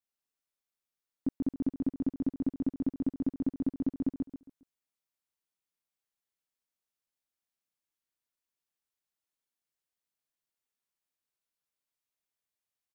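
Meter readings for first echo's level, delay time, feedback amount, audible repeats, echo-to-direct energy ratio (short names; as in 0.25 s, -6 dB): -3.5 dB, 0.136 s, 32%, 4, -3.0 dB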